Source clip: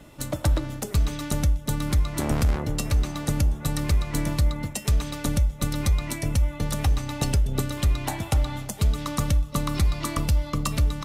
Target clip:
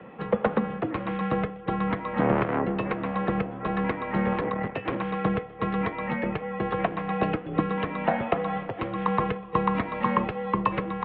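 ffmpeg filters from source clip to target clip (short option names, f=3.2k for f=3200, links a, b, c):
-filter_complex "[0:a]asettb=1/sr,asplit=3[a][b][c];[a]atrim=end=4.324[d];[b]atrim=start=4.32:end=4.97,asetpts=PTS-STARTPTS,afade=t=in:d=0.004:c=qsin,afade=t=out:st=0.646:d=0.004:c=qsin,aeval=exprs='0.211*(cos(1*acos(clip(val(0)/0.211,-1,1)))-cos(1*PI/2))+0.0188*(cos(8*acos(clip(val(0)/0.211,-1,1)))-cos(8*PI/2))':c=same[e];[c]atrim=start=4.966[f];[d][e]acrossfade=d=0.004:c1=hsin:c2=qsin[g];[g][f]acrossfade=d=0.004:c1=qsin:c2=hsin,acrossover=split=250 2300:gain=0.224 1 0.126[h][i][j];[h][i][j]amix=inputs=3:normalize=0,highpass=f=230:t=q:w=0.5412,highpass=f=230:t=q:w=1.307,lowpass=f=3.2k:t=q:w=0.5176,lowpass=f=3.2k:t=q:w=0.7071,lowpass=f=3.2k:t=q:w=1.932,afreqshift=-100,volume=8.5dB"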